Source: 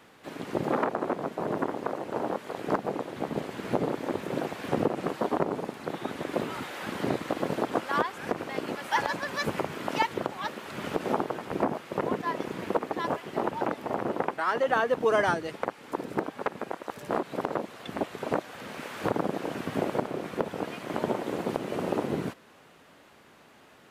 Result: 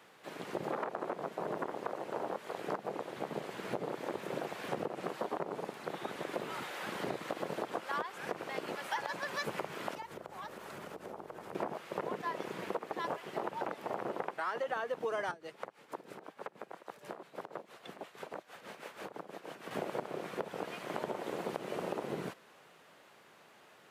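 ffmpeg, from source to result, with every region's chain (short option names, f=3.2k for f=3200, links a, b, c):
-filter_complex "[0:a]asettb=1/sr,asplit=3[a][b][c];[a]atrim=end=9.944[d];[b]atrim=start=9.94:end=11.55,asetpts=PTS-STARTPTS,afade=t=in:d=0.004:c=qsin,afade=t=out:st=1.606:d=0.004:c=qsin,equalizer=f=3k:t=o:w=1.9:g=-6.5,acompressor=threshold=-36dB:ratio=8:attack=3.2:release=140:knee=1:detection=peak,aeval=exprs='val(0)+0.00282*(sin(2*PI*50*n/s)+sin(2*PI*2*50*n/s)/2+sin(2*PI*3*50*n/s)/3+sin(2*PI*4*50*n/s)/4+sin(2*PI*5*50*n/s)/5)':c=same[e];[c]atrim=start=11.546[f];[d][e]acrossfade=d=0.004:c1=hsin:c2=qsin[g];[g][f]acrossfade=d=0.004:c1=qsin:c2=hsin,asettb=1/sr,asplit=3[h][i][j];[h]atrim=end=15.314[k];[i]atrim=start=15.31:end=19.71,asetpts=PTS-STARTPTS,afade=t=in:d=0.004:c=qsin,afade=t=out:st=4.396:d=0.004:c=qsin,acrossover=split=170|880[l][m][n];[l]acompressor=threshold=-55dB:ratio=4[o];[m]acompressor=threshold=-37dB:ratio=4[p];[n]acompressor=threshold=-43dB:ratio=4[q];[o][p][q]amix=inputs=3:normalize=0,tremolo=f=6.2:d=0.72[r];[j]atrim=start=19.706[s];[k][r]acrossfade=d=0.004:c1=hsin:c2=qsin[t];[t][s]acrossfade=d=0.004:c1=qsin:c2=hsin,highpass=160,equalizer=f=260:w=2.4:g=-8,acompressor=threshold=-29dB:ratio=6,volume=-3.5dB"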